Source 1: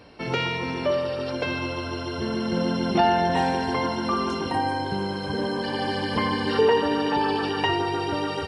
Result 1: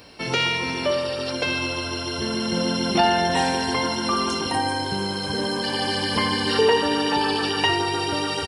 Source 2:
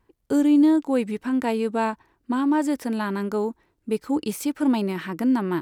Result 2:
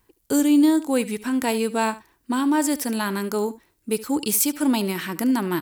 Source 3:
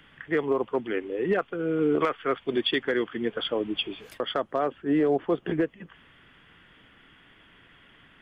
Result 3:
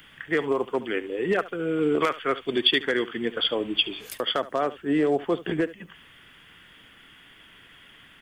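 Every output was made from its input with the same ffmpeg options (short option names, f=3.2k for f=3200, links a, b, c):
-filter_complex "[0:a]crystalizer=i=4:c=0,asplit=2[a][b];[b]aecho=0:1:72:0.141[c];[a][c]amix=inputs=2:normalize=0"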